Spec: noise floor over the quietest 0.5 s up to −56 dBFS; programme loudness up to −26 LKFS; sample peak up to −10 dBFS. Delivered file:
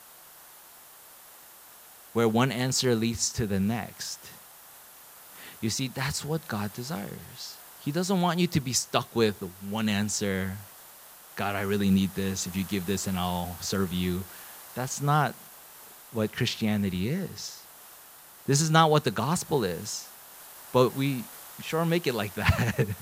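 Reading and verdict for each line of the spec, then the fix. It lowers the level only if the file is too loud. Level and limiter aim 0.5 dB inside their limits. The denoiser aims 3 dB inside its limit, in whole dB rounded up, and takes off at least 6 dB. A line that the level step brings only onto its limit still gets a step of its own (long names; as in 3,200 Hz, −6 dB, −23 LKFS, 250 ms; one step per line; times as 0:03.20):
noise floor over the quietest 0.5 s −51 dBFS: out of spec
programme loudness −28.0 LKFS: in spec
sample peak −5.5 dBFS: out of spec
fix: broadband denoise 8 dB, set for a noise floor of −51 dBFS
brickwall limiter −10.5 dBFS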